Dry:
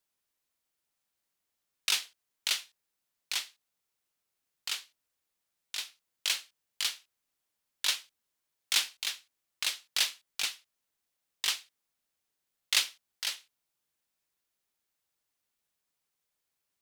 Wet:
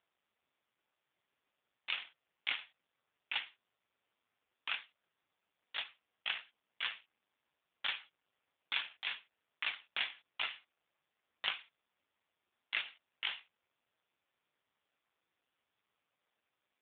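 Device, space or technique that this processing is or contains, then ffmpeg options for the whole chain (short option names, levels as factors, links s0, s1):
voicemail: -af "highpass=330,lowpass=2700,acompressor=threshold=0.0178:ratio=8,volume=2.99" -ar 8000 -c:a libopencore_amrnb -b:a 5150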